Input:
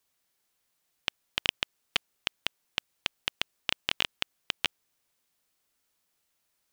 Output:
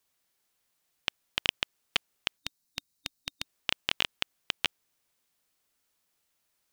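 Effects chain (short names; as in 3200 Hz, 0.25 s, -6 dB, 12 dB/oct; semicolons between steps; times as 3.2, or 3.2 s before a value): spectral gain 2.38–3.44, 280–3700 Hz -9 dB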